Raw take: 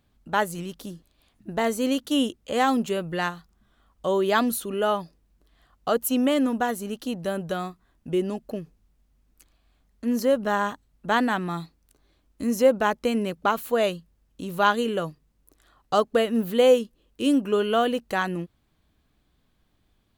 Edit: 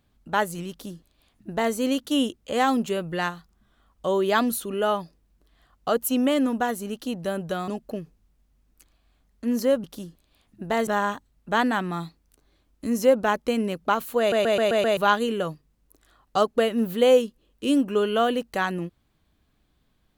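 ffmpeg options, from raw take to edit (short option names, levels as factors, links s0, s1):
-filter_complex "[0:a]asplit=10[s0][s1][s2][s3][s4][s5][s6][s7][s8][s9];[s0]atrim=end=7.682[s10];[s1]atrim=start=8.278:end=10.442[s11];[s2]atrim=start=0.708:end=1.742[s12];[s3]atrim=start=10.438:end=13.892[s13];[s4]atrim=start=13.758:end=13.892[s14];[s5]atrim=start=13.758:end=13.892[s15];[s6]atrim=start=13.758:end=13.892[s16];[s7]atrim=start=13.758:end=13.892[s17];[s8]atrim=start=13.758:end=13.892[s18];[s9]atrim=start=14.538[s19];[s10][s11]acrossfade=d=0.004:c1=hsin:c2=hsin[s20];[s20][s12]acrossfade=d=0.004:c1=hsin:c2=hsin[s21];[s21][s13]acrossfade=d=0.004:c1=hsin:c2=hsin[s22];[s22][s14]acrossfade=d=0.004:c1=hsin:c2=hsin[s23];[s23][s15]acrossfade=d=0.004:c1=hsin:c2=hsin[s24];[s24][s16]acrossfade=d=0.004:c1=hsin:c2=hsin[s25];[s25][s17]acrossfade=d=0.004:c1=hsin:c2=hsin[s26];[s26][s18]acrossfade=d=0.004:c1=hsin:c2=hsin[s27];[s27][s19]acrossfade=d=0.004:c1=hsin:c2=hsin"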